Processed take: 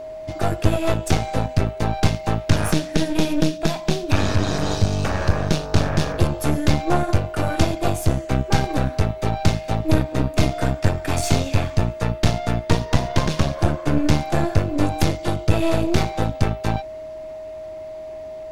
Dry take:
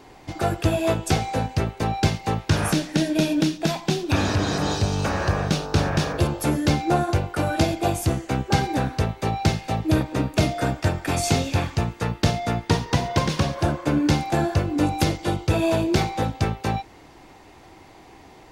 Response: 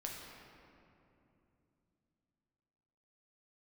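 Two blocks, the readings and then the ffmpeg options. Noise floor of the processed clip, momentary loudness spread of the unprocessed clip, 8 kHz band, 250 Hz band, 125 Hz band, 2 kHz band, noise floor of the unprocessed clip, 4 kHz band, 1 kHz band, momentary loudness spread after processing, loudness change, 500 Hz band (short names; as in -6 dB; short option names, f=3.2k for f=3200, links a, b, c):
-34 dBFS, 4 LU, 0.0 dB, +0.5 dB, +2.5 dB, 0.0 dB, -48 dBFS, 0.0 dB, 0.0 dB, 5 LU, +1.5 dB, +2.0 dB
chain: -af "aeval=exprs='0.631*(cos(1*acos(clip(val(0)/0.631,-1,1)))-cos(1*PI/2))+0.0891*(cos(6*acos(clip(val(0)/0.631,-1,1)))-cos(6*PI/2))':c=same,lowshelf=f=87:g=8.5,aeval=exprs='val(0)+0.0316*sin(2*PI*630*n/s)':c=same,volume=-1dB"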